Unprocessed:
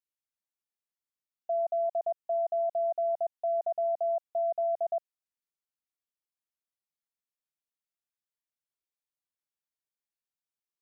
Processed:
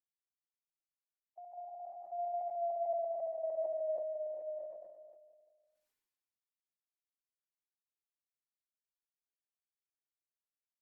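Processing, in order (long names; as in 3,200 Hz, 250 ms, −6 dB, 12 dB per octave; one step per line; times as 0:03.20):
spectral magnitudes quantised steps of 15 dB
source passing by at 0:03.22, 29 m/s, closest 29 metres
reverb reduction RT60 0.82 s
mains-hum notches 50/100/150/200/250 Hz
output level in coarse steps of 11 dB
tuned comb filter 380 Hz, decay 0.47 s, mix 50%
pitch shifter −0.5 semitones
reverse bouncing-ball delay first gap 70 ms, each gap 1.25×, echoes 5
on a send at −1 dB: convolution reverb RT60 0.50 s, pre-delay 139 ms
on the sum: level that may fall only so fast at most 39 dB per second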